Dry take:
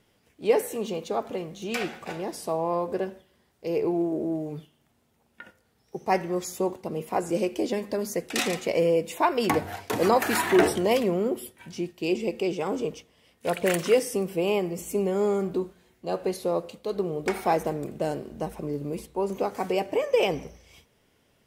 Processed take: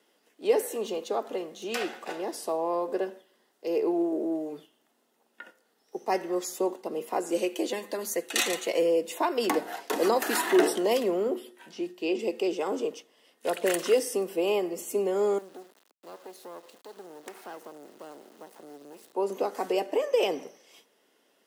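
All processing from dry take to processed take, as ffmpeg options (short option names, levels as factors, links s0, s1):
-filter_complex "[0:a]asettb=1/sr,asplit=3[s0][s1][s2];[s0]atrim=end=7.314[s3];[s1]atrim=start=7.31:end=8.82,asetpts=PTS-STARTPTS,afade=t=in:d=0.004:c=qsin,afade=t=out:st=1.506:d=0.004:c=qsin,tiltshelf=f=1200:g=-3.5,bandreject=f=5100:w=5.7,aecho=1:1:5.9:0.39,atrim=end_sample=66591[s4];[s2]atrim=start=8.816[s5];[s3][s4]acrossfade=d=0.004:c1=hsin:c2=qsin[s6];[s6][s5]acrossfade=d=0.004:c1=qsin:c2=hsin,asettb=1/sr,asplit=3[s7][s8][s9];[s7]atrim=end=11.234[s10];[s8]atrim=start=11.23:end=12.19,asetpts=PTS-STARTPTS,afade=t=in:d=0.004:c=qsin,afade=t=out:st=0.956:d=0.004:c=qsin,acrossover=split=4500[s11][s12];[s12]acompressor=threshold=0.00141:ratio=4:attack=1:release=60[s13];[s11][s13]amix=inputs=2:normalize=0,bandreject=f=60:t=h:w=6,bandreject=f=120:t=h:w=6,bandreject=f=180:t=h:w=6,bandreject=f=240:t=h:w=6,bandreject=f=300:t=h:w=6,bandreject=f=360:t=h:w=6,bandreject=f=420:t=h:w=6[s14];[s9]atrim=start=12.186[s15];[s10][s14]acrossfade=d=0.004:c1=hsin:c2=qsin[s16];[s16][s15]acrossfade=d=0.004:c1=qsin:c2=hsin,asettb=1/sr,asplit=3[s17][s18][s19];[s17]atrim=end=15.384[s20];[s18]atrim=start=15.38:end=19.13,asetpts=PTS-STARTPTS,afade=t=in:d=0.004:c=qsin,afade=t=out:st=3.746:d=0.004:c=qsin,acompressor=threshold=0.00501:ratio=2:attack=3.2:release=140:knee=1:detection=peak,acrusher=bits=6:dc=4:mix=0:aa=0.000001[s21];[s19]atrim=start=19.126[s22];[s20][s21]acrossfade=d=0.004:c1=hsin:c2=qsin[s23];[s23][s22]acrossfade=d=0.004:c1=qsin:c2=hsin,highpass=f=270:w=0.5412,highpass=f=270:w=1.3066,bandreject=f=2300:w=10,acrossover=split=450|3000[s24][s25][s26];[s25]acompressor=threshold=0.0355:ratio=2[s27];[s24][s27][s26]amix=inputs=3:normalize=0"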